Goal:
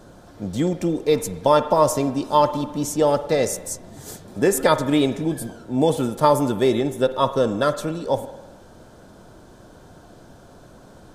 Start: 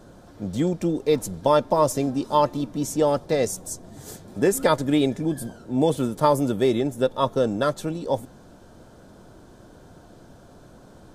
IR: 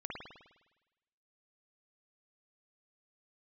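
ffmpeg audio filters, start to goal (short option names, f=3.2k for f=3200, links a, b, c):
-filter_complex "[0:a]asplit=2[a][b];[b]highpass=390[c];[1:a]atrim=start_sample=2205[d];[c][d]afir=irnorm=-1:irlink=0,volume=-8.5dB[e];[a][e]amix=inputs=2:normalize=0,volume=1.5dB"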